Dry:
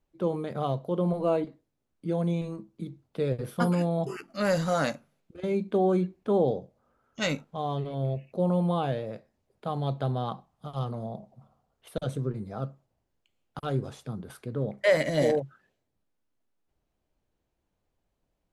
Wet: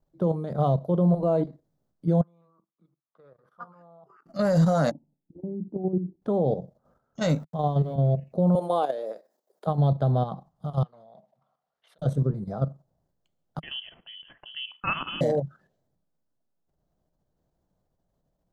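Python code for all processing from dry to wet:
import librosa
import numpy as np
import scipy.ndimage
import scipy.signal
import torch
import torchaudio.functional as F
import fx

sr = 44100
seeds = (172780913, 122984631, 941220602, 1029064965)

y = fx.chain(x, sr, fx.bandpass_q(hz=1200.0, q=5.8),
    fx.level_steps(step_db=13), at=(2.21, 4.26))
y = fx.chain(y, sr, fx.formant_cascade(vowel='u'),
    fx.low_shelf(hz=270.0, db=6.0), at=(4.91, 6.22))
y = fx.chain(y, sr, fx.sample_gate(floor_db=-57.0),
    fx.band_squash(depth_pct=40), at=(7.35, 7.96))
y = fx.chain(y, sr, fx.highpass(hz=340.0, slope=24),
    fx.high_shelf(hz=6400.0, db=11.5), at=(8.55, 9.67))
y = fx.chain(y, sr, fx.over_compress(threshold_db=-39.0, ratio=-1.0),
    fx.bandpass_q(hz=2400.0, q=1.6), at=(10.83, 11.99))
y = fx.chain(y, sr, fx.highpass(hz=100.0, slope=12),
    fx.freq_invert(carrier_hz=3200), at=(13.6, 15.21))
y = fx.low_shelf(y, sr, hz=67.0, db=3.0)
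y = fx.level_steps(y, sr, step_db=10)
y = fx.graphic_eq_15(y, sr, hz=(160, 630, 2500, 10000), db=(10, 6, -12, -5))
y = y * 10.0 ** (3.5 / 20.0)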